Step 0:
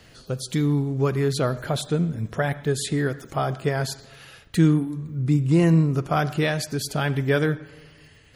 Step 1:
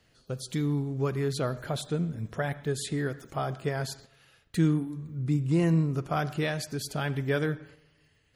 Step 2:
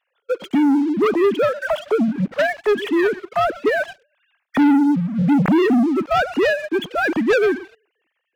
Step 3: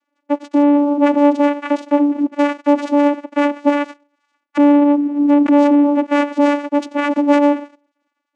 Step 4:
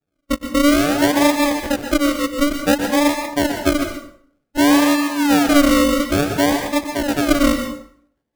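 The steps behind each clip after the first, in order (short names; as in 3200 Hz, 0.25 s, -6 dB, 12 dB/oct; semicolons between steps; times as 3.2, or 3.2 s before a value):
gate -43 dBFS, range -8 dB; gain -6.5 dB
sine-wave speech; sample leveller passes 3; gain +4.5 dB
vocoder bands 4, saw 289 Hz; gain +4 dB
decimation with a swept rate 42×, swing 60% 0.56 Hz; plate-style reverb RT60 0.56 s, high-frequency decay 0.75×, pre-delay 0.11 s, DRR 5.5 dB; gain -3 dB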